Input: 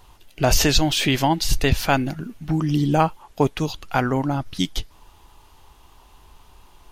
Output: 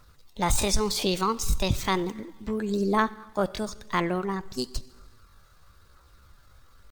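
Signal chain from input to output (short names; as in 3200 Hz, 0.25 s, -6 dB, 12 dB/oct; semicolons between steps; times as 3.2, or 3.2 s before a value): Schroeder reverb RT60 1.2 s, combs from 28 ms, DRR 17 dB; phaser 1 Hz, delay 2.1 ms, feedback 23%; pitch shift +5.5 st; gain -7 dB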